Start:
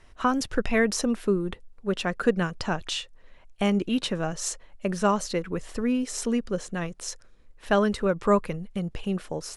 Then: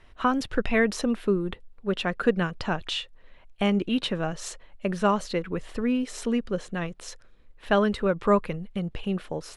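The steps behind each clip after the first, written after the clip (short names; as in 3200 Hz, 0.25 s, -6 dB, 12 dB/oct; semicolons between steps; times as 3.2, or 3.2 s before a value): resonant high shelf 4600 Hz -6 dB, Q 1.5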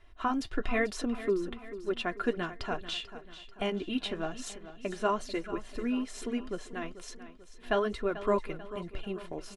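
comb 2.9 ms, depth 56%; flange 1.1 Hz, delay 1.3 ms, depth 7.5 ms, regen -59%; feedback echo 0.44 s, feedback 49%, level -14 dB; gain -3 dB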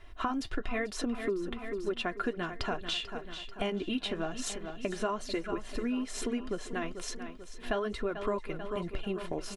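compressor 4:1, threshold -37 dBFS, peak gain reduction 12.5 dB; gain +6.5 dB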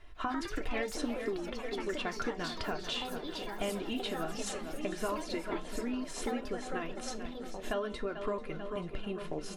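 resonator 150 Hz, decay 0.29 s, harmonics all, mix 60%; echoes that change speed 0.149 s, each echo +4 st, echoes 3, each echo -6 dB; delay with a stepping band-pass 0.704 s, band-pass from 170 Hz, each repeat 0.7 oct, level -8.5 dB; gain +3 dB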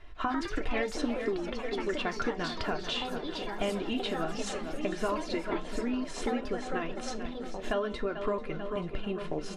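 air absorption 58 m; gain +4 dB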